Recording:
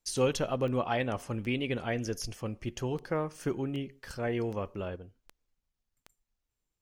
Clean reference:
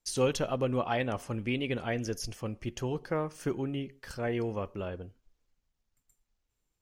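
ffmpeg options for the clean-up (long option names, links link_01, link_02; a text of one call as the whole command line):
ffmpeg -i in.wav -af "adeclick=threshold=4,asetnsamples=nb_out_samples=441:pad=0,asendcmd='4.96 volume volume 4.5dB',volume=0dB" out.wav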